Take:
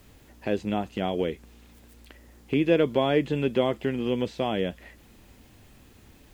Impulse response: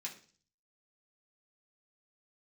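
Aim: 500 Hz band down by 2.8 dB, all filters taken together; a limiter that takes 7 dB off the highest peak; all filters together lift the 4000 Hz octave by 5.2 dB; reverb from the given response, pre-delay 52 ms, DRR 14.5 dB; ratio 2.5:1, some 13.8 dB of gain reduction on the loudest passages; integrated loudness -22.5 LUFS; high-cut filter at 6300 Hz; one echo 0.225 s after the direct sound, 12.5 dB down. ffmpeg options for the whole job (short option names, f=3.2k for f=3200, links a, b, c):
-filter_complex "[0:a]lowpass=6.3k,equalizer=f=500:t=o:g=-3.5,equalizer=f=4k:t=o:g=7.5,acompressor=threshold=-41dB:ratio=2.5,alimiter=level_in=5dB:limit=-24dB:level=0:latency=1,volume=-5dB,aecho=1:1:225:0.237,asplit=2[a][b];[1:a]atrim=start_sample=2205,adelay=52[c];[b][c]afir=irnorm=-1:irlink=0,volume=-13dB[d];[a][d]amix=inputs=2:normalize=0,volume=20dB"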